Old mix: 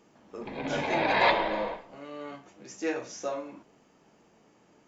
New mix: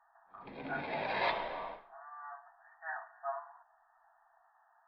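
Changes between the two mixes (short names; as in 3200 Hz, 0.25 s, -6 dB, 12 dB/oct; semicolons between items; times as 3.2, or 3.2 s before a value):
speech: add brick-wall FIR band-pass 650–1900 Hz; background -10.0 dB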